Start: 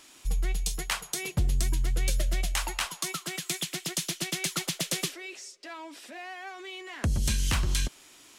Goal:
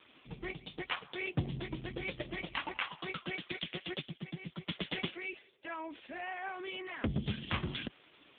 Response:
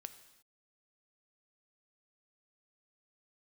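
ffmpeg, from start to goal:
-filter_complex "[0:a]asettb=1/sr,asplit=3[link_01][link_02][link_03];[link_01]atrim=end=4.014[link_04];[link_02]atrim=start=4.01:end=4.68,asetpts=PTS-STARTPTS,afade=type=in:duration=0.004:curve=qsin,afade=type=out:start_time=0.666:duration=0.004:curve=qsin,acrossover=split=230[link_05][link_06];[link_06]acompressor=threshold=-42dB:ratio=10[link_07];[link_05][link_07]amix=inputs=2:normalize=0[link_08];[link_03]atrim=start=4.676[link_09];[link_04][link_08]acrossfade=duration=0.004:curve1=hsin:curve2=qsin[link_10];[link_10][link_09]acrossfade=duration=0.004:curve1=qsin:curve2=hsin,volume=1.5dB" -ar 8000 -c:a libopencore_amrnb -b:a 5150

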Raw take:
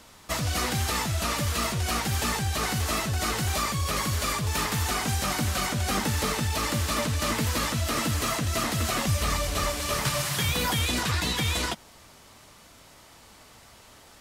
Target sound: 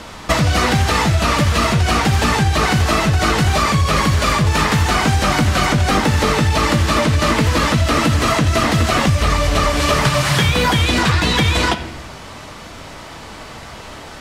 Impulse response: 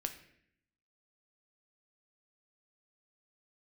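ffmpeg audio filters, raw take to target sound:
-filter_complex "[0:a]acontrast=35,aemphasis=mode=reproduction:type=50fm,asplit=2[link_01][link_02];[1:a]atrim=start_sample=2205[link_03];[link_02][link_03]afir=irnorm=-1:irlink=0,volume=5.5dB[link_04];[link_01][link_04]amix=inputs=2:normalize=0,acompressor=threshold=-17dB:ratio=6,volume=5dB"

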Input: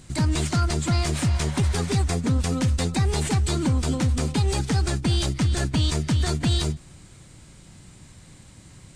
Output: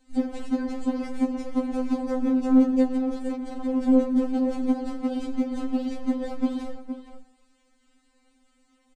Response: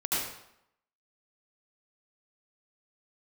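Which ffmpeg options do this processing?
-filter_complex "[0:a]afwtdn=0.0631,aemphasis=mode=reproduction:type=cd,asoftclip=type=hard:threshold=-22.5dB,asplit=3[link_01][link_02][link_03];[link_01]afade=type=out:start_time=2.84:duration=0.02[link_04];[link_02]tremolo=f=23:d=0.788,afade=type=in:start_time=2.84:duration=0.02,afade=type=out:start_time=3.69:duration=0.02[link_05];[link_03]afade=type=in:start_time=3.69:duration=0.02[link_06];[link_04][link_05][link_06]amix=inputs=3:normalize=0,asplit=2[link_07][link_08];[link_08]adelay=466.5,volume=-9dB,highshelf=frequency=4000:gain=-10.5[link_09];[link_07][link_09]amix=inputs=2:normalize=0,asplit=2[link_10][link_11];[1:a]atrim=start_sample=2205,lowpass=4600[link_12];[link_11][link_12]afir=irnorm=-1:irlink=0,volume=-20.5dB[link_13];[link_10][link_13]amix=inputs=2:normalize=0,afftfilt=real='re*3.46*eq(mod(b,12),0)':imag='im*3.46*eq(mod(b,12),0)':win_size=2048:overlap=0.75,volume=5dB"

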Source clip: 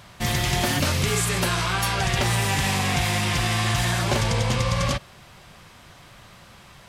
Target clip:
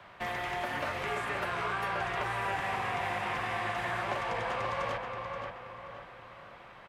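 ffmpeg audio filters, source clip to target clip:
ffmpeg -i in.wav -filter_complex "[0:a]acrossover=split=330 2800:gain=0.224 1 0.0794[link_01][link_02][link_03];[link_01][link_02][link_03]amix=inputs=3:normalize=0,acrossover=split=220|460|2300|6200[link_04][link_05][link_06][link_07][link_08];[link_04]acompressor=threshold=-47dB:ratio=4[link_09];[link_05]acompressor=threshold=-50dB:ratio=4[link_10];[link_06]acompressor=threshold=-32dB:ratio=4[link_11];[link_07]acompressor=threshold=-48dB:ratio=4[link_12];[link_08]acompressor=threshold=-55dB:ratio=4[link_13];[link_09][link_10][link_11][link_12][link_13]amix=inputs=5:normalize=0,asplit=2[link_14][link_15];[link_15]adelay=528,lowpass=frequency=3000:poles=1,volume=-4dB,asplit=2[link_16][link_17];[link_17]adelay=528,lowpass=frequency=3000:poles=1,volume=0.44,asplit=2[link_18][link_19];[link_19]adelay=528,lowpass=frequency=3000:poles=1,volume=0.44,asplit=2[link_20][link_21];[link_21]adelay=528,lowpass=frequency=3000:poles=1,volume=0.44,asplit=2[link_22][link_23];[link_23]adelay=528,lowpass=frequency=3000:poles=1,volume=0.44,asplit=2[link_24][link_25];[link_25]adelay=528,lowpass=frequency=3000:poles=1,volume=0.44[link_26];[link_14][link_16][link_18][link_20][link_22][link_24][link_26]amix=inputs=7:normalize=0,volume=-1.5dB" out.wav

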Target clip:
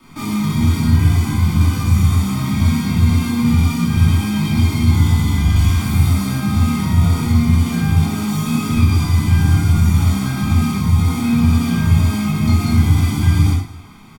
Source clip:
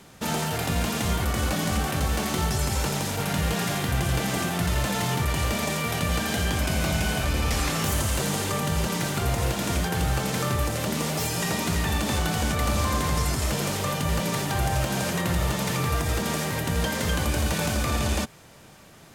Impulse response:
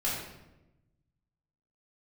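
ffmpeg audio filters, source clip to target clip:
-filter_complex "[0:a]bass=frequency=250:gain=2,treble=frequency=4000:gain=-7,aecho=1:1:1.2:0.87,acrossover=split=270|3000[link_01][link_02][link_03];[link_02]acompressor=threshold=-33dB:ratio=6[link_04];[link_01][link_04][link_03]amix=inputs=3:normalize=0,aecho=1:1:124|298:0.2|0.106[link_05];[1:a]atrim=start_sample=2205,afade=type=out:start_time=0.17:duration=0.01,atrim=end_sample=7938,asetrate=28665,aresample=44100[link_06];[link_05][link_06]afir=irnorm=-1:irlink=0,asetrate=59535,aresample=44100,volume=-6.5dB"

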